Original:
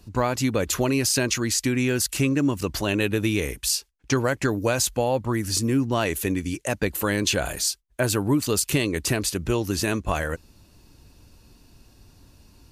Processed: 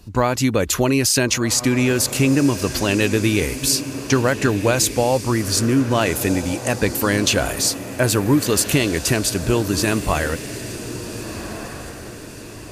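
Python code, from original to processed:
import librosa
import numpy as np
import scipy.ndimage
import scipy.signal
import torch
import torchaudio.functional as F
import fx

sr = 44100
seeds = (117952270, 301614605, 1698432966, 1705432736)

y = fx.echo_diffused(x, sr, ms=1497, feedback_pct=45, wet_db=-11.0)
y = F.gain(torch.from_numpy(y), 5.0).numpy()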